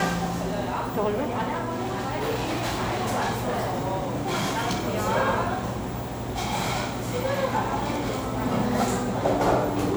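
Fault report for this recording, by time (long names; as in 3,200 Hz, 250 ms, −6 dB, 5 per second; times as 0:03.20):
0:01.07–0:04.83: clipping −22 dBFS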